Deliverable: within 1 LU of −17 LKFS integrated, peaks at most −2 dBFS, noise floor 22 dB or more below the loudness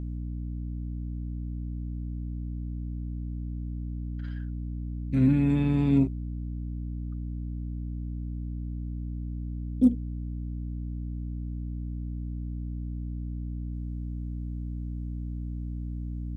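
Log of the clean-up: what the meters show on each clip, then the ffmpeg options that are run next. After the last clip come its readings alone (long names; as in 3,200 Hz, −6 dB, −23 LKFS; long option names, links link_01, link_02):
mains hum 60 Hz; hum harmonics up to 300 Hz; level of the hum −31 dBFS; integrated loudness −32.0 LKFS; sample peak −10.5 dBFS; target loudness −17.0 LKFS
→ -af "bandreject=frequency=60:width_type=h:width=6,bandreject=frequency=120:width_type=h:width=6,bandreject=frequency=180:width_type=h:width=6,bandreject=frequency=240:width_type=h:width=6,bandreject=frequency=300:width_type=h:width=6"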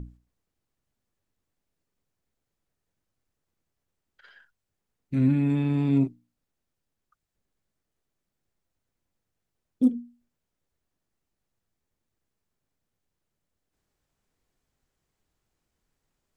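mains hum none found; integrated loudness −25.0 LKFS; sample peak −12.0 dBFS; target loudness −17.0 LKFS
→ -af "volume=8dB"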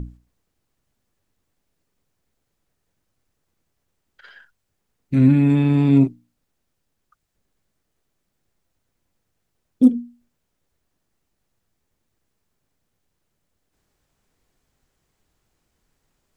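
integrated loudness −17.0 LKFS; sample peak −4.0 dBFS; background noise floor −75 dBFS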